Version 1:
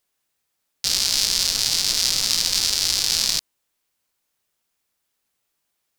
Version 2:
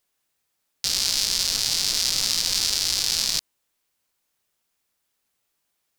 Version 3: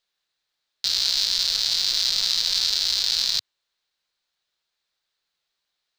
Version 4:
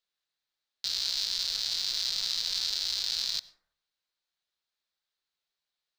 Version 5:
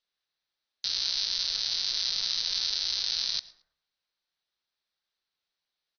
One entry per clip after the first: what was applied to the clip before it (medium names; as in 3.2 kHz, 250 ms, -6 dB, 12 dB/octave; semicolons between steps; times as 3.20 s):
peak limiter -6 dBFS, peak gain reduction 4 dB
median filter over 3 samples; fifteen-band graphic EQ 100 Hz -8 dB, 250 Hz -8 dB, 1.6 kHz +4 dB, 4 kHz +12 dB, 10 kHz -6 dB; trim -5.5 dB
plate-style reverb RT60 0.69 s, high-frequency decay 0.35×, pre-delay 80 ms, DRR 17.5 dB; trim -8.5 dB
brick-wall FIR low-pass 6.3 kHz; feedback delay 112 ms, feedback 23%, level -24 dB; trim +1.5 dB